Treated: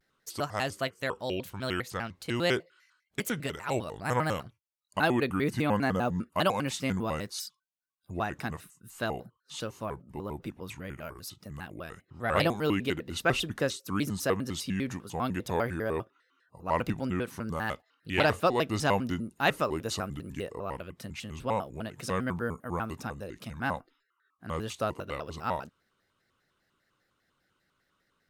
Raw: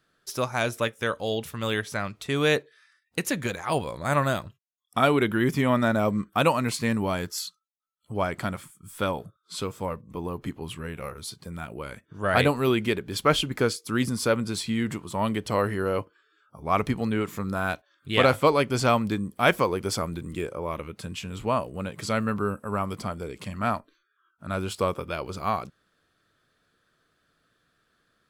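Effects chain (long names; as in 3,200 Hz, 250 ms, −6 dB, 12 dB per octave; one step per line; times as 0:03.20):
pitch modulation by a square or saw wave square 5 Hz, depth 250 cents
level −5 dB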